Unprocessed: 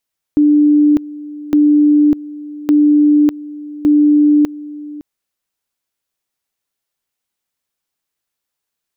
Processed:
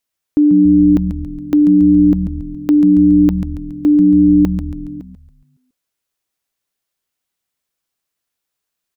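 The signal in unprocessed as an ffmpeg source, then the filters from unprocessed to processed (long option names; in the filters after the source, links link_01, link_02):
-f lavfi -i "aevalsrc='pow(10,(-6.5-19*gte(mod(t,1.16),0.6))/20)*sin(2*PI*296*t)':duration=4.64:sample_rate=44100"
-filter_complex "[0:a]bandreject=frequency=880:width=21,asplit=2[link_01][link_02];[link_02]asplit=5[link_03][link_04][link_05][link_06][link_07];[link_03]adelay=139,afreqshift=-110,volume=-9dB[link_08];[link_04]adelay=278,afreqshift=-220,volume=-15.6dB[link_09];[link_05]adelay=417,afreqshift=-330,volume=-22.1dB[link_10];[link_06]adelay=556,afreqshift=-440,volume=-28.7dB[link_11];[link_07]adelay=695,afreqshift=-550,volume=-35.2dB[link_12];[link_08][link_09][link_10][link_11][link_12]amix=inputs=5:normalize=0[link_13];[link_01][link_13]amix=inputs=2:normalize=0"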